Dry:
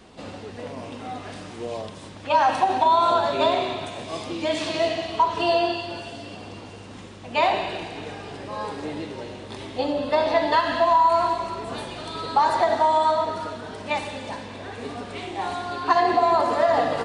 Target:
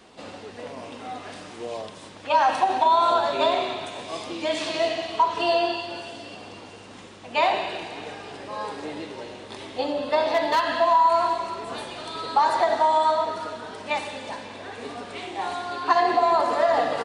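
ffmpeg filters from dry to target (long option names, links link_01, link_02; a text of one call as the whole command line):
ffmpeg -i in.wav -filter_complex "[0:a]asettb=1/sr,asplit=3[link_01][link_02][link_03];[link_01]atrim=end=10.304[link_04];[link_02]atrim=start=10.3:end=10.78,asetpts=PTS-STARTPTS,afade=type=in:duration=0.004:curve=qsin,afade=type=out:start_time=0.476:duration=0.004:curve=qsin,asoftclip=type=hard:threshold=-15.5dB[link_05];[link_03]atrim=start=10.776[link_06];[link_04][link_05]acrossfade=duration=0.004:curve1=hsin:curve2=qsin[link_07];[link_07][link_06]acrossfade=duration=0.004:curve1=qsin:curve2=hsin,lowshelf=frequency=190:gain=-11.5,asplit=2[link_08][link_09];[link_09]aecho=0:1:537:0.0668[link_10];[link_08][link_10]amix=inputs=2:normalize=0" out.wav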